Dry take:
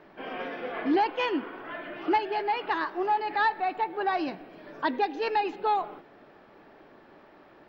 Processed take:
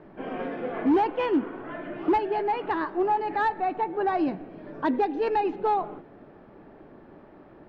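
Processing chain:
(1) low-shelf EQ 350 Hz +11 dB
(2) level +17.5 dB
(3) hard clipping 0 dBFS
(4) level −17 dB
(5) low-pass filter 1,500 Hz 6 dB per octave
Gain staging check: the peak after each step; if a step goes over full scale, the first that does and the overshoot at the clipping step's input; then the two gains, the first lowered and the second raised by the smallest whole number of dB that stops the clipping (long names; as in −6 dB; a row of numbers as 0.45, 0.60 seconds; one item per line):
−11.0, +6.5, 0.0, −17.0, −17.0 dBFS
step 2, 6.5 dB
step 2 +10.5 dB, step 4 −10 dB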